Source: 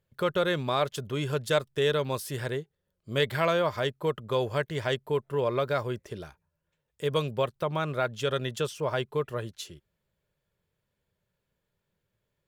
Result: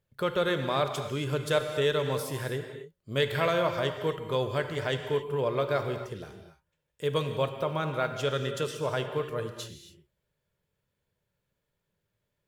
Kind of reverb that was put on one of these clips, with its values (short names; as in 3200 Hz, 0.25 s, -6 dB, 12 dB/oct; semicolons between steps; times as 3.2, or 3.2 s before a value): non-linear reverb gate 0.3 s flat, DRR 6 dB; gain -1.5 dB